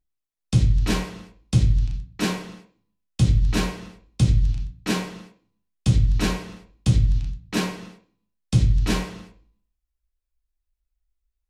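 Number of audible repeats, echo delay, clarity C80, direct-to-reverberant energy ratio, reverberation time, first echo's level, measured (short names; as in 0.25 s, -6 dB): none, none, 16.5 dB, 1.5 dB, 0.45 s, none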